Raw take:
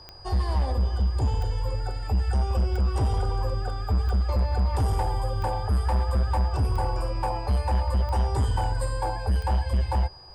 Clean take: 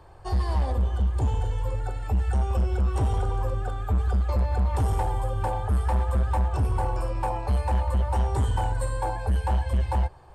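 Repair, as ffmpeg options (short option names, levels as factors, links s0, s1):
-af "adeclick=t=4,bandreject=f=4900:w=30"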